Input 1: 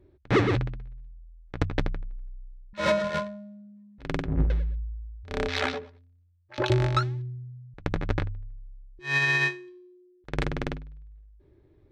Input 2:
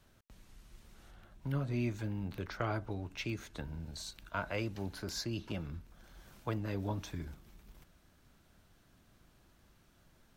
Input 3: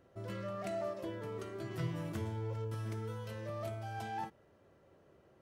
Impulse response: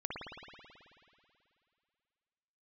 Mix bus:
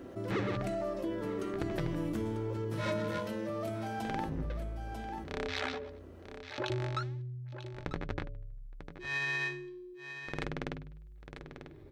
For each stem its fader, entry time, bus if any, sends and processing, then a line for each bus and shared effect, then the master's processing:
−13.0 dB, 0.00 s, no send, echo send −21 dB, mains-hum notches 50/100 Hz
muted
−3.0 dB, 0.00 s, no send, echo send −9.5 dB, parametric band 270 Hz +12 dB 0.75 octaves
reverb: not used
echo: single-tap delay 944 ms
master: low-shelf EQ 93 Hz −6 dB; hum removal 142.4 Hz, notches 4; envelope flattener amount 50%

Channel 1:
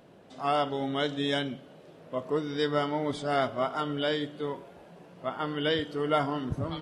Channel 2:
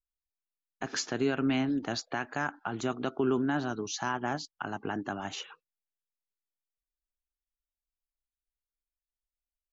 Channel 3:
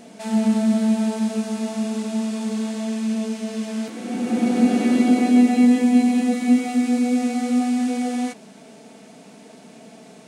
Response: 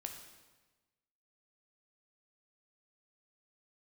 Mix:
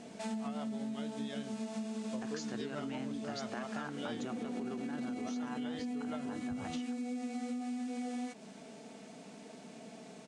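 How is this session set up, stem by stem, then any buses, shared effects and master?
−3.5 dB, 0.00 s, no bus, no send, rotating-speaker cabinet horn 6 Hz
0.0 dB, 1.40 s, bus A, no send, no processing
−6.5 dB, 0.00 s, bus A, no send, low-pass filter 9,300 Hz 24 dB per octave
bus A: 0.0 dB, brickwall limiter −20 dBFS, peak gain reduction 8 dB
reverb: not used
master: downward compressor 12 to 1, threshold −36 dBFS, peak gain reduction 15 dB

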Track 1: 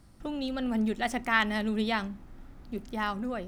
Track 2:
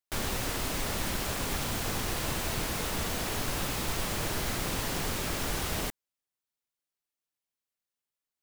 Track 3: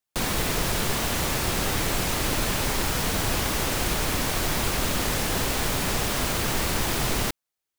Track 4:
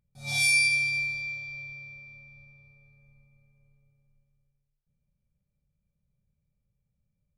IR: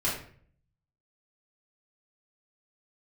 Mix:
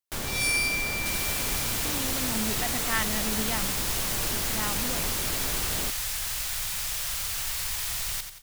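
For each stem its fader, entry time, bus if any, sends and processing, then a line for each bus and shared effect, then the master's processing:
−4.5 dB, 1.60 s, no send, no echo send, no processing
−1.5 dB, 0.00 s, no send, no echo send, no processing
−4.5 dB, 0.90 s, no send, echo send −8 dB, guitar amp tone stack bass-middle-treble 10-0-10
−5.0 dB, 0.00 s, no send, no echo send, bit reduction 8 bits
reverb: not used
echo: repeating echo 89 ms, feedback 45%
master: high-shelf EQ 5,300 Hz +4.5 dB

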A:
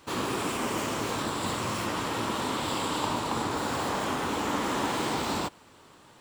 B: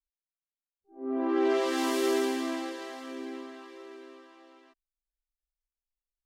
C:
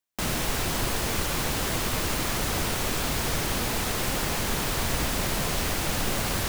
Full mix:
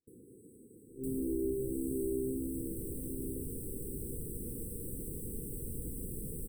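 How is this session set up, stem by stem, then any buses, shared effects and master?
−13.0 dB, 0.00 s, no send, downward compressor 12 to 1, threshold −37 dBFS, peak gain reduction 13.5 dB
+1.0 dB, 0.00 s, no send, lower of the sound and its delayed copy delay 0.6 ms
−10.5 dB, 0.85 s, no send, no processing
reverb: not used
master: noise gate with hold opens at −49 dBFS; linear-phase brick-wall band-stop 510–7,800 Hz; downward compressor 2 to 1, threshold −36 dBFS, peak gain reduction 7.5 dB

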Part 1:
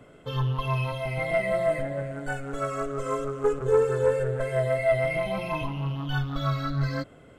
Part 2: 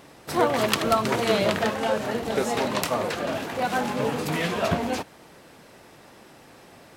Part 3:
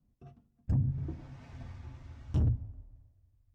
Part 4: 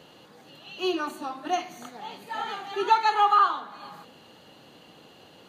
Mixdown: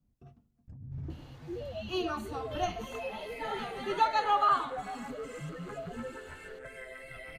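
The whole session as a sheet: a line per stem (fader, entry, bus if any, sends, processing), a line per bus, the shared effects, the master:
+2.0 dB, 2.25 s, no send, octave-band graphic EQ 125/250/500/1,000/2,000/4,000/8,000 Hz +5/−9/−6/−10/+6/−4/−3 dB; gate on every frequency bin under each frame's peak −10 dB weak; downward compressor 2.5 to 1, threshold −50 dBFS, peak gain reduction 12 dB
−0.5 dB, 1.15 s, no send, downward compressor, threshold −27 dBFS, peak gain reduction 11 dB; spectral peaks only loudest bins 1
−6.5 dB, 0.00 s, no send, compressor whose output falls as the input rises −36 dBFS, ratio −1
−6.0 dB, 1.10 s, no send, no processing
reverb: not used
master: no processing

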